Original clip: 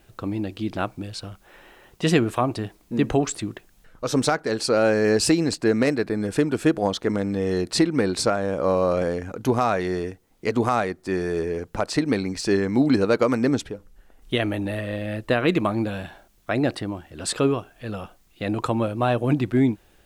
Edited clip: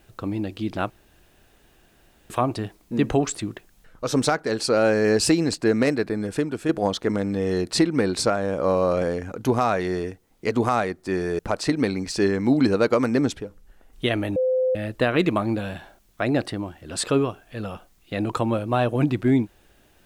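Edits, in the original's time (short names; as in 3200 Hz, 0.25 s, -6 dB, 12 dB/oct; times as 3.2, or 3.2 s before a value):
0.9–2.3 room tone
6.01–6.69 fade out, to -7 dB
11.39–11.68 cut
14.65–15.04 bleep 514 Hz -18 dBFS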